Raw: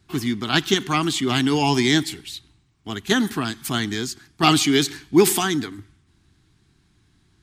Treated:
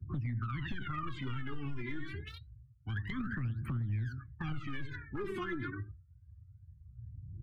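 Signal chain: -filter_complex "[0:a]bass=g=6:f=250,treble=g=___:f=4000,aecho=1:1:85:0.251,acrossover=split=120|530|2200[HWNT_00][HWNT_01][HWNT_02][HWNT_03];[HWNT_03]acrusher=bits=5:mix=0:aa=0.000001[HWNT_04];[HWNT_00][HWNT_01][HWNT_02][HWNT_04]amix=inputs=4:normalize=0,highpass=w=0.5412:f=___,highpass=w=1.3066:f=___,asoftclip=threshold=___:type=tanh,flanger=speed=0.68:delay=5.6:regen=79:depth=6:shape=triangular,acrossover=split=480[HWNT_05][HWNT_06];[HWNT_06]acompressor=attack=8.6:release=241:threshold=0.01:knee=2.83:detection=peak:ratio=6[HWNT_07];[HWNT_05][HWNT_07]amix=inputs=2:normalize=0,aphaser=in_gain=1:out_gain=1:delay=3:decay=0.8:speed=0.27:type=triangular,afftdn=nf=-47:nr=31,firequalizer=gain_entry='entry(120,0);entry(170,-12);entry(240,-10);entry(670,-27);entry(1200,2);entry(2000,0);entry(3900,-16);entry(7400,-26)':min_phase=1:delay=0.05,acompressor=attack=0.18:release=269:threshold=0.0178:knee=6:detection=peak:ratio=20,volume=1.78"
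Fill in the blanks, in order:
-8, 55, 55, 0.168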